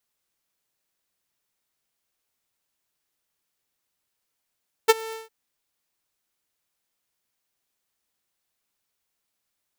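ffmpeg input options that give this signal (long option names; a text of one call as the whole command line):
ffmpeg -f lavfi -i "aevalsrc='0.447*(2*mod(446*t,1)-1)':duration=0.408:sample_rate=44100,afade=type=in:duration=0.019,afade=type=out:start_time=0.019:duration=0.029:silence=0.075,afade=type=out:start_time=0.24:duration=0.168" out.wav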